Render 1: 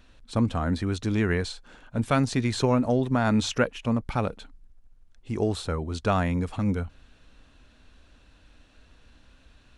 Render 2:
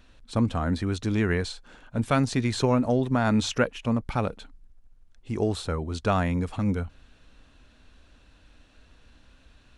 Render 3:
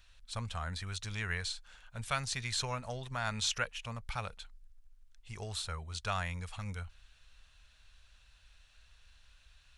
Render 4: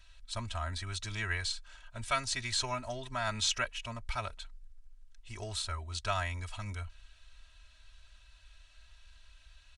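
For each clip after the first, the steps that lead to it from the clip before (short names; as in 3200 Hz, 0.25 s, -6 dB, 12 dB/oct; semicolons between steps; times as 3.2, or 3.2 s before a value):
nothing audible
passive tone stack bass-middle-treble 10-0-10
comb 3.1 ms, depth 87%; downsampling 22050 Hz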